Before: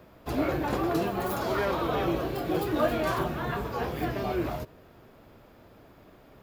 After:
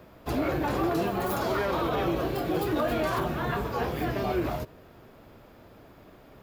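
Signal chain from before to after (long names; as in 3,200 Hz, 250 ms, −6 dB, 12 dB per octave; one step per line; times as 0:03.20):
brickwall limiter −20.5 dBFS, peak gain reduction 6.5 dB
level +2 dB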